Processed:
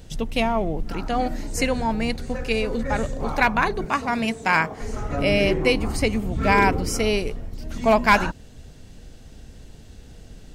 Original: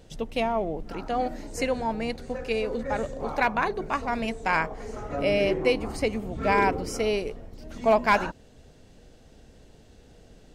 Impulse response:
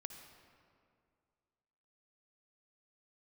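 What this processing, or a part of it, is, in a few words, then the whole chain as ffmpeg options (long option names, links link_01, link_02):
smiley-face EQ: -filter_complex "[0:a]lowshelf=frequency=160:gain=5,equalizer=frequency=530:width_type=o:width=1.6:gain=-5.5,highshelf=frequency=9100:gain=5.5,asettb=1/sr,asplit=3[link_01][link_02][link_03];[link_01]atrim=end=3.854[link_04];[link_02]atrim=start=3.85:end=4.81,asetpts=PTS-STARTPTS,afade=type=in:duration=0.004:curve=qsin,afade=type=out:start_time=0.956:duration=0.004:curve=qsin,highpass=120[link_05];[link_03]atrim=start=4.806[link_06];[link_04][link_05]acrossfade=duration=0.004:curve1=hsin:curve2=qsin[link_07];[link_07][link_06]acrossfade=duration=0.004:curve1=qsin:curve2=hsin,volume=6.5dB"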